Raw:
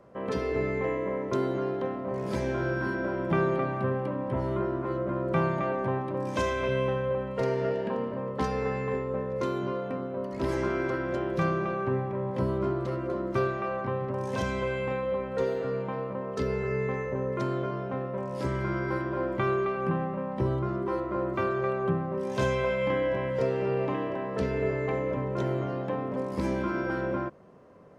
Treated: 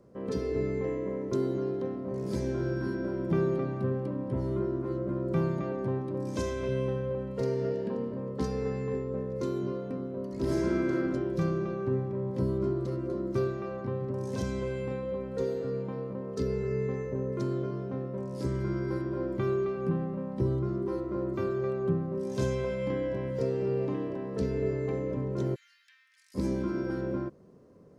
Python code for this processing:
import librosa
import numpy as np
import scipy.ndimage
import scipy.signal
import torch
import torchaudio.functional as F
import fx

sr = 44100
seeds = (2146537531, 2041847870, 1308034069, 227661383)

y = fx.reverb_throw(x, sr, start_s=10.42, length_s=0.61, rt60_s=0.89, drr_db=-1.5)
y = fx.steep_highpass(y, sr, hz=1700.0, slope=48, at=(25.54, 26.34), fade=0.02)
y = fx.band_shelf(y, sr, hz=1400.0, db=-10.5, octaves=2.8)